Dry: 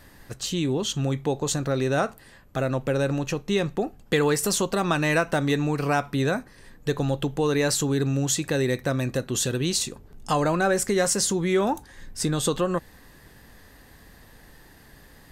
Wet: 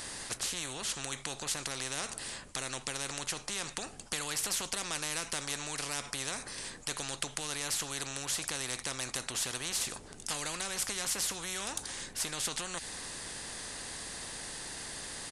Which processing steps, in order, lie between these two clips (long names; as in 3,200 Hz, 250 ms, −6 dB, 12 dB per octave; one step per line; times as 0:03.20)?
downsampling to 22,050 Hz
first-order pre-emphasis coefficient 0.8
every bin compressed towards the loudest bin 4 to 1